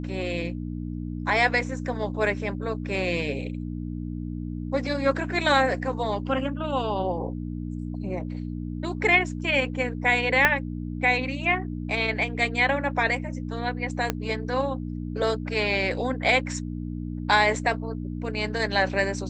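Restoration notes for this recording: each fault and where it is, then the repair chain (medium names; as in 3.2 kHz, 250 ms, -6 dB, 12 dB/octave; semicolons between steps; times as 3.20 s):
hum 60 Hz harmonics 5 -32 dBFS
10.45 s: pop -5 dBFS
14.10 s: pop -9 dBFS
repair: de-click; de-hum 60 Hz, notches 5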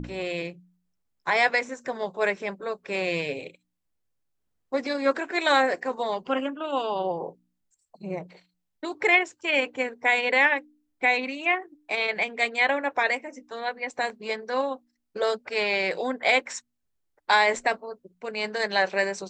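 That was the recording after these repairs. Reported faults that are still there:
10.45 s: pop
14.10 s: pop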